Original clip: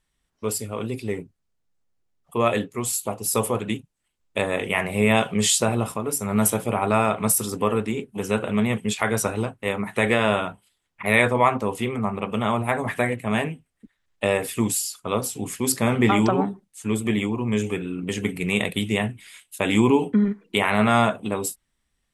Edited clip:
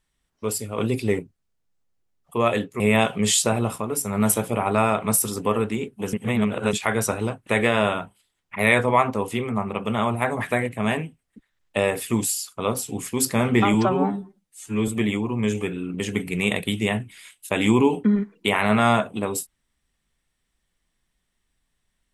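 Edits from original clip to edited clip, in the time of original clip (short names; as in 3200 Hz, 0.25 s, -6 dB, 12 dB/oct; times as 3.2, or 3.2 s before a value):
0.78–1.19 gain +5.5 dB
2.8–4.96 cut
8.29–8.89 reverse
9.63–9.94 cut
16.21–16.97 stretch 1.5×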